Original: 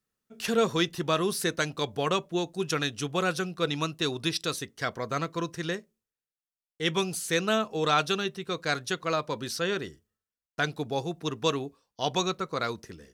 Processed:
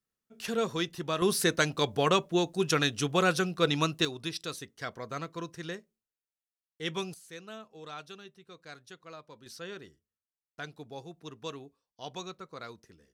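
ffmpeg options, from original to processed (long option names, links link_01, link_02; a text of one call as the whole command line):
ffmpeg -i in.wav -af "asetnsamples=nb_out_samples=441:pad=0,asendcmd='1.22 volume volume 2dB;4.05 volume volume -7dB;7.14 volume volume -19dB;9.46 volume volume -13dB',volume=-5.5dB" out.wav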